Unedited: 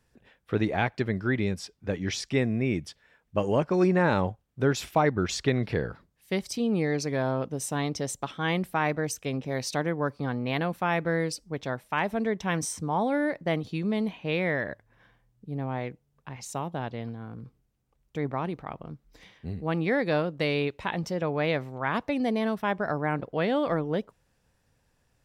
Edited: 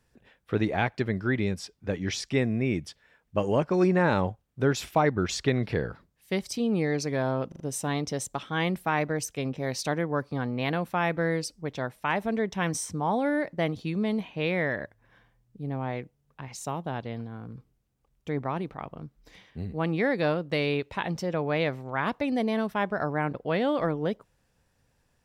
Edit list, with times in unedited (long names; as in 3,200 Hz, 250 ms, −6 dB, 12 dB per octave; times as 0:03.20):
0:07.48: stutter 0.04 s, 4 plays